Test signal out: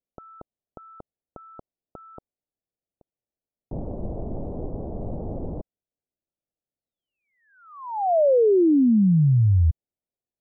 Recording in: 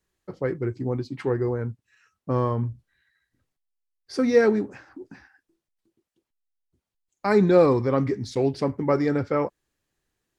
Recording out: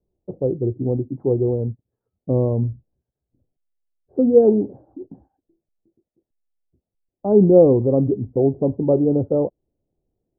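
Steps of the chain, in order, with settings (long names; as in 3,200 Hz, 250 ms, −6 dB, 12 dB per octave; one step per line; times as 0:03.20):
Butterworth low-pass 700 Hz 36 dB per octave
level +5.5 dB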